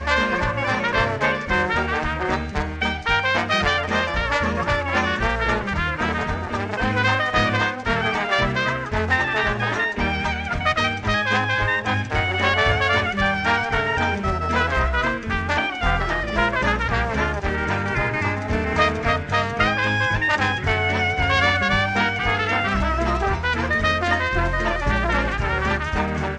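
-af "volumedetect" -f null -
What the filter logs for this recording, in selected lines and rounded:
mean_volume: -21.4 dB
max_volume: -4.3 dB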